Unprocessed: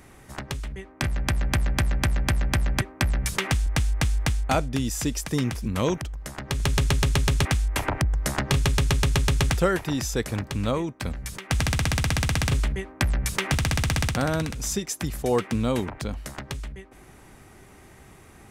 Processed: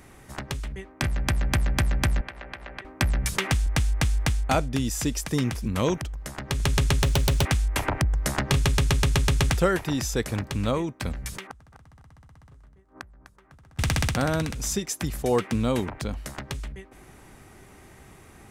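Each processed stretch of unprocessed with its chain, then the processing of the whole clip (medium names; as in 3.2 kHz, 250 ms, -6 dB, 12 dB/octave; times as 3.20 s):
2.21–2.85 s: three-band isolator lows -20 dB, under 340 Hz, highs -20 dB, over 3.7 kHz + compression 4:1, threshold -34 dBFS
7.03–7.45 s: self-modulated delay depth 0.14 ms + peaking EQ 550 Hz +5.5 dB 0.43 oct
11.47–13.79 s: resonant high shelf 1.8 kHz -9.5 dB, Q 1.5 + inverted gate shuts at -27 dBFS, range -29 dB + feedback delay 251 ms, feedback 25%, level -12 dB
whole clip: none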